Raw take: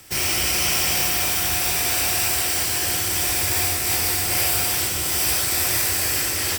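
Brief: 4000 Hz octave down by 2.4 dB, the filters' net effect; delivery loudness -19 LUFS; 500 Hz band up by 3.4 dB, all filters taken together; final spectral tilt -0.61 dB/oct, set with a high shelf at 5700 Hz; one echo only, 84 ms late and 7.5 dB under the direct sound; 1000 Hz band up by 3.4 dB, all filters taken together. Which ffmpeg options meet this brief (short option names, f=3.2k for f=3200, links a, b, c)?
-af "equalizer=f=500:t=o:g=3.5,equalizer=f=1k:t=o:g=3.5,equalizer=f=4k:t=o:g=-6.5,highshelf=f=5.7k:g=5.5,aecho=1:1:84:0.422,volume=-4dB"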